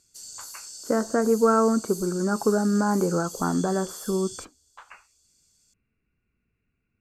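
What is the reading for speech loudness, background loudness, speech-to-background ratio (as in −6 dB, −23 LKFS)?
−24.5 LKFS, −38.0 LKFS, 13.5 dB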